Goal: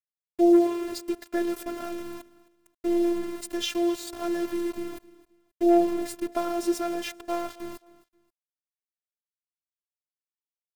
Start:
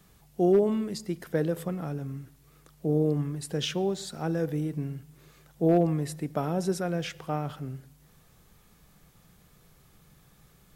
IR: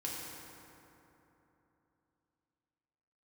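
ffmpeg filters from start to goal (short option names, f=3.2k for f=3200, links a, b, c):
-af "aeval=exprs='val(0)*gte(abs(val(0)),0.0141)':c=same,aecho=1:1:265|530:0.1|0.031,afftfilt=real='hypot(re,im)*cos(PI*b)':imag='0':win_size=512:overlap=0.75,volume=5.5dB"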